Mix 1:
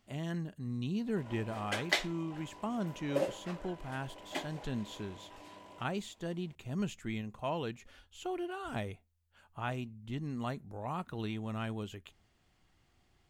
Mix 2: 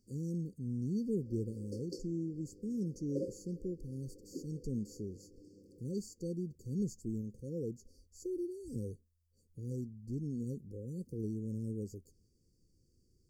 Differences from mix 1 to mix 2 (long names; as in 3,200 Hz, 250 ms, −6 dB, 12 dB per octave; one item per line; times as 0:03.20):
background: add low-pass filter 1,400 Hz 6 dB per octave
master: add linear-phase brick-wall band-stop 540–4,400 Hz